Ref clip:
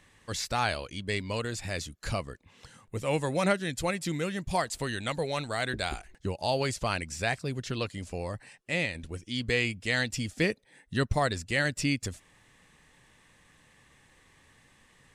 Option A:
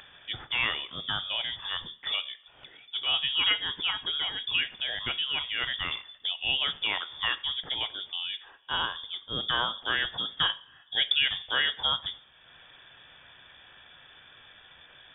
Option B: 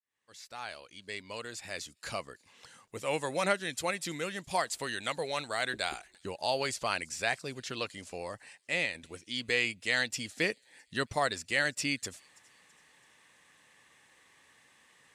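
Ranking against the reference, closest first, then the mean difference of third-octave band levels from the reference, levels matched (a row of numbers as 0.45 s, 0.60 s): B, A; 4.5 dB, 14.0 dB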